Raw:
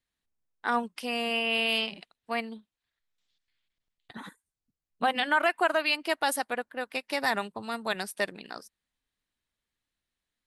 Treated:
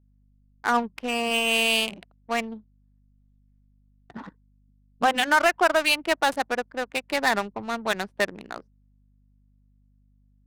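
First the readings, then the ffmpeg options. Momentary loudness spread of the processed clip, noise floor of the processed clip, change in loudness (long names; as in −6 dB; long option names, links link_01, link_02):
20 LU, −62 dBFS, +5.0 dB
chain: -af "adynamicsmooth=sensitivity=6:basefreq=570,aeval=exprs='val(0)+0.000562*(sin(2*PI*50*n/s)+sin(2*PI*2*50*n/s)/2+sin(2*PI*3*50*n/s)/3+sin(2*PI*4*50*n/s)/4+sin(2*PI*5*50*n/s)/5)':channel_layout=same,volume=5dB"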